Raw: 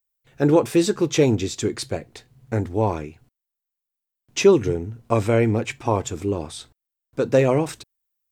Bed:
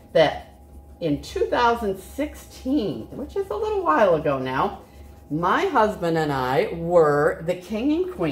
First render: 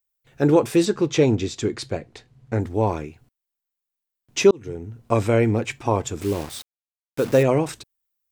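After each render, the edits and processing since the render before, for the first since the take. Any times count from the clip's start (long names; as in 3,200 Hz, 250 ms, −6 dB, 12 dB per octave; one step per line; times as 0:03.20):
0:00.85–0:02.60: high-frequency loss of the air 54 metres
0:04.51–0:05.07: fade in
0:06.21–0:07.43: bit-depth reduction 6 bits, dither none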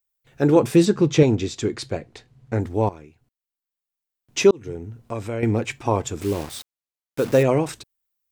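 0:00.56–0:01.23: parametric band 160 Hz +7.5 dB 1.5 octaves
0:02.89–0:04.40: fade in, from −15 dB
0:04.97–0:05.43: downward compressor 1.5 to 1, threshold −41 dBFS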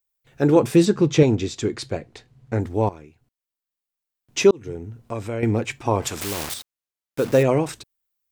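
0:06.02–0:06.54: every bin compressed towards the loudest bin 2 to 1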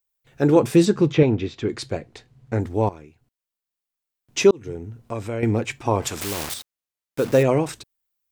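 0:01.12–0:01.69: Chebyshev low-pass filter 2,700 Hz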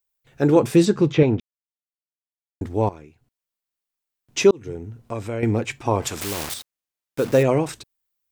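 0:01.40–0:02.61: silence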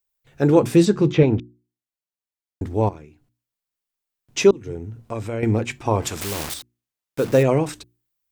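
low-shelf EQ 200 Hz +3.5 dB
mains-hum notches 60/120/180/240/300/360 Hz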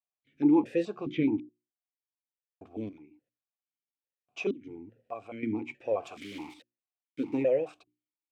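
formant filter that steps through the vowels 4.7 Hz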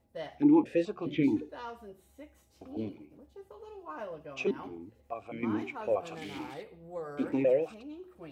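mix in bed −23.5 dB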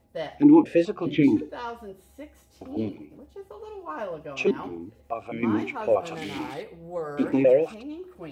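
level +7.5 dB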